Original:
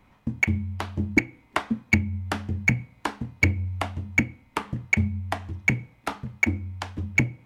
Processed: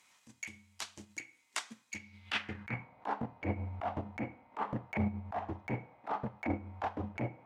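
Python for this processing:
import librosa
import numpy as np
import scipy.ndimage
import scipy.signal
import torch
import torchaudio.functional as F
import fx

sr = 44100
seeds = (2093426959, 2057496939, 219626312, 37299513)

y = fx.filter_sweep_bandpass(x, sr, from_hz=7300.0, to_hz=740.0, start_s=1.92, end_s=2.94, q=2.0)
y = fx.over_compress(y, sr, threshold_db=-39.0, ratio=-1.0)
y = fx.transient(y, sr, attack_db=-11, sustain_db=-7)
y = F.gain(torch.from_numpy(y), 11.0).numpy()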